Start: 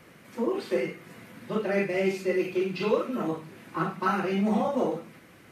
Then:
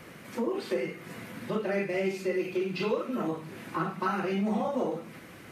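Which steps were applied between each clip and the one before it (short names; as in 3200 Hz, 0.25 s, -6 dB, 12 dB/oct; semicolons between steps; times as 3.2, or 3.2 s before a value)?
compressor 2:1, threshold -38 dBFS, peak gain reduction 11 dB; gain +5 dB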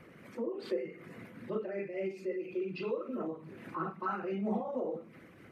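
formant sharpening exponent 1.5; noise-modulated level, depth 60%; gain -3 dB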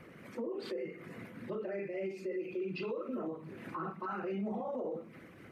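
limiter -32 dBFS, peak gain reduction 9.5 dB; gain +1.5 dB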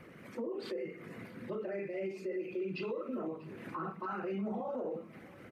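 feedback echo 0.642 s, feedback 45%, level -22 dB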